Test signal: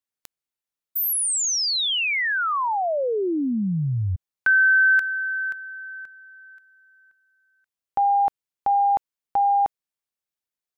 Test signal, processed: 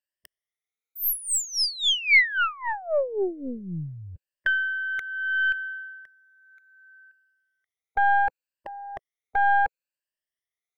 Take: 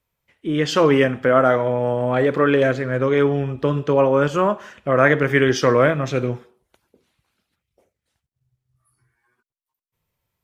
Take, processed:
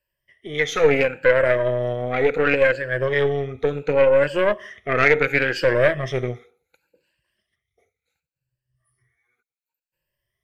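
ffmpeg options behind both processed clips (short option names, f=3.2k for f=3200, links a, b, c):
-af "afftfilt=real='re*pow(10,18/40*sin(2*PI*(1.3*log(max(b,1)*sr/1024/100)/log(2)-(0.7)*(pts-256)/sr)))':imag='im*pow(10,18/40*sin(2*PI*(1.3*log(max(b,1)*sr/1024/100)/log(2)-(0.7)*(pts-256)/sr)))':win_size=1024:overlap=0.75,aeval=exprs='(tanh(2*val(0)+0.8)-tanh(0.8))/2':c=same,equalizer=f=250:t=o:w=1:g=-7,equalizer=f=500:t=o:w=1:g=7,equalizer=f=1k:t=o:w=1:g=-8,equalizer=f=2k:t=o:w=1:g=11,volume=-3.5dB"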